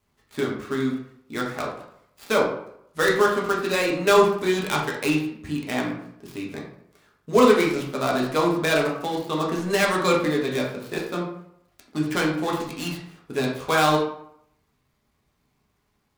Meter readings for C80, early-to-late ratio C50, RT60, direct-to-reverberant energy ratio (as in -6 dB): 8.0 dB, 4.5 dB, 0.70 s, -3.0 dB